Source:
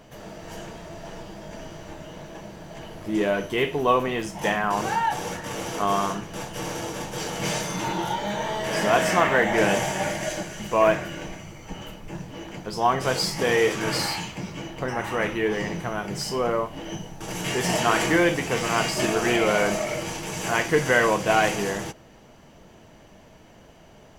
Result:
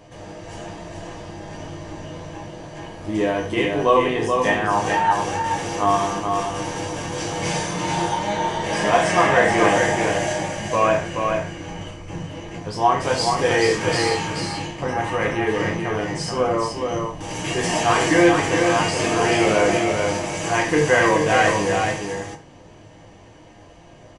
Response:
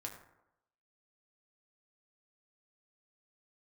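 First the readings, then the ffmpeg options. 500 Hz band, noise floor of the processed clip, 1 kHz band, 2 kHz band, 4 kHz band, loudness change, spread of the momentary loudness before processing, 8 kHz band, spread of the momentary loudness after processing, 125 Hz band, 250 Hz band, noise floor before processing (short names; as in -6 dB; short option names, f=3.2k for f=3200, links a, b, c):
+4.0 dB, -46 dBFS, +5.0 dB, +3.5 dB, +2.5 dB, +4.0 dB, 19 LU, +3.0 dB, 18 LU, +5.0 dB, +4.5 dB, -50 dBFS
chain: -filter_complex "[0:a]bandreject=f=1.4k:w=12,aecho=1:1:429:0.596[a];[1:a]atrim=start_sample=2205,atrim=end_sample=4410[b];[a][b]afir=irnorm=-1:irlink=0,aresample=22050,aresample=44100,volume=5.5dB"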